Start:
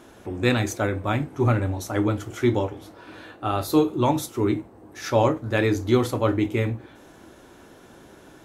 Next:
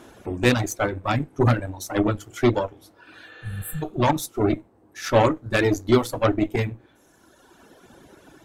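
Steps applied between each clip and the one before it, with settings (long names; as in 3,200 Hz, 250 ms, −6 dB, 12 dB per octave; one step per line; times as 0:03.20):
harmonic generator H 8 −19 dB, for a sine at −5.5 dBFS
reverb reduction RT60 1.8 s
healed spectral selection 0:03.34–0:03.80, 200–7,300 Hz before
level +2 dB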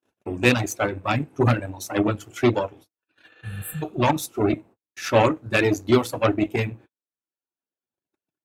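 noise gate −43 dBFS, range −48 dB
high-pass filter 83 Hz
parametric band 2,600 Hz +7.5 dB 0.22 octaves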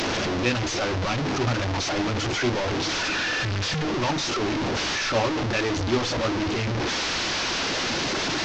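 linear delta modulator 32 kbit/s, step −13 dBFS
level −6.5 dB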